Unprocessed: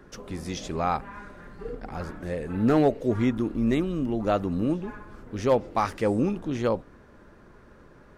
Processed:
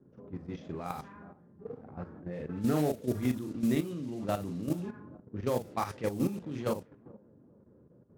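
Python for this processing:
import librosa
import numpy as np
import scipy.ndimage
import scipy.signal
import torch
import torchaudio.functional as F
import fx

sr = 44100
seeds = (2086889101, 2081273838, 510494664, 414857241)

p1 = x + fx.echo_feedback(x, sr, ms=419, feedback_pct=55, wet_db=-22.0, dry=0)
p2 = fx.mod_noise(p1, sr, seeds[0], snr_db=22)
p3 = scipy.signal.sosfilt(scipy.signal.butter(4, 94.0, 'highpass', fs=sr, output='sos'), p2)
p4 = fx.high_shelf(p3, sr, hz=2700.0, db=6.5)
p5 = fx.doubler(p4, sr, ms=40.0, db=-5.0)
p6 = fx.env_lowpass(p5, sr, base_hz=430.0, full_db=-19.5)
p7 = fx.level_steps(p6, sr, step_db=11)
p8 = fx.low_shelf(p7, sr, hz=280.0, db=8.0)
y = p8 * 10.0 ** (-8.5 / 20.0)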